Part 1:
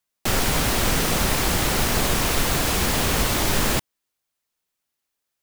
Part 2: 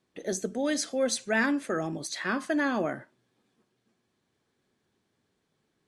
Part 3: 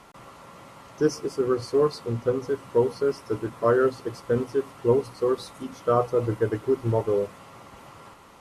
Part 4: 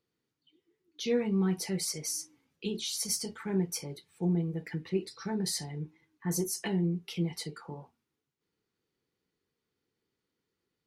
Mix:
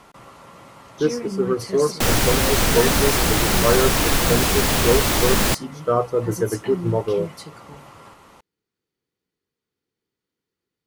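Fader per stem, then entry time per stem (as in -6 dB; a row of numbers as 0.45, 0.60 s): +2.5, -3.5, +2.0, -0.5 dB; 1.75, 1.45, 0.00, 0.00 s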